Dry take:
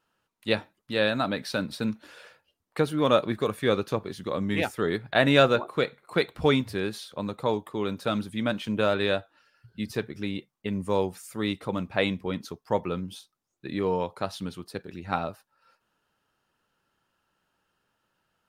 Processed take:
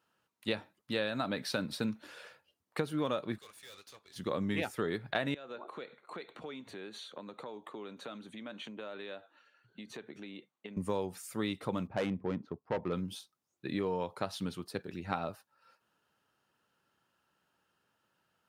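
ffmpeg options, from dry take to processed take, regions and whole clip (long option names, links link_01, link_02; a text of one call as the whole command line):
ffmpeg -i in.wav -filter_complex "[0:a]asettb=1/sr,asplit=3[link_01][link_02][link_03];[link_01]atrim=end=3.384[link_04];[link_02]atrim=start=3.38:end=4.16,asetpts=PTS-STARTPTS,afade=type=in:duration=0.004:curve=qsin,afade=type=out:start_time=0.776:duration=0.004:curve=qsin,bandpass=frequency=6200:width_type=q:width=0.86,aeval=exprs='(tanh(224*val(0)+0.65)-tanh(0.65))/224':channel_layout=same[link_05];[link_03]atrim=start=4.156[link_06];[link_04][link_05]acrossfade=duration=0.004:curve1=hsin:curve2=qsin[link_07];[link_07][link_06]acrossfade=duration=0.004:curve1=qsin:curve2=hsin,asettb=1/sr,asplit=3[link_08][link_09][link_10];[link_08]atrim=end=5.344[link_11];[link_09]atrim=start=5.34:end=10.77,asetpts=PTS-STARTPTS,afade=type=in:duration=0.004:curve=qsin,afade=type=out:start_time=5.426:duration=0.004:curve=qsin,acompressor=threshold=-37dB:ratio=8:attack=3.2:release=140:knee=1:detection=peak,asuperstop=centerf=5100:order=4:qfactor=4.5,acrossover=split=190 7100:gain=0.0708 1 0.141[link_12][link_13][link_14];[link_12][link_13][link_14]amix=inputs=3:normalize=0[link_15];[link_10]atrim=start=10.766[link_16];[link_11][link_15]acrossfade=duration=0.004:curve1=hsin:curve2=qsin[link_17];[link_17][link_16]acrossfade=duration=0.004:curve1=qsin:curve2=hsin,asettb=1/sr,asplit=3[link_18][link_19][link_20];[link_18]atrim=end=11.874[link_21];[link_19]atrim=start=11.87:end=12.93,asetpts=PTS-STARTPTS,afade=type=in:duration=0.004:curve=qsin,afade=type=out:start_time=1.056:duration=0.004:curve=qsin,asoftclip=type=hard:threshold=-21.5dB,adynamicsmooth=sensitivity=1.5:basefreq=970[link_22];[link_20]atrim=start=12.926[link_23];[link_21][link_22]acrossfade=duration=0.004:curve1=hsin:curve2=qsin[link_24];[link_24][link_23]acrossfade=duration=0.004:curve1=qsin:curve2=hsin,highpass=82,acompressor=threshold=-27dB:ratio=12,volume=-2dB" out.wav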